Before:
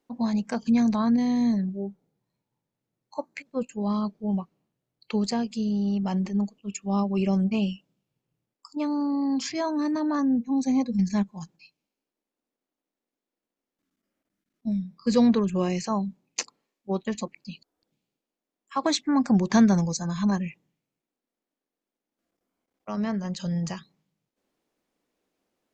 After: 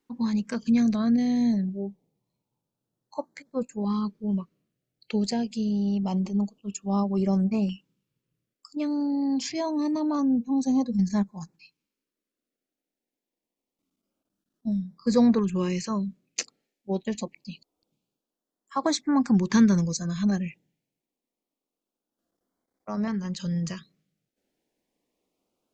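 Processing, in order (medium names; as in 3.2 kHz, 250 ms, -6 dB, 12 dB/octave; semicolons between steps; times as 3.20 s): LFO notch saw up 0.26 Hz 610–3200 Hz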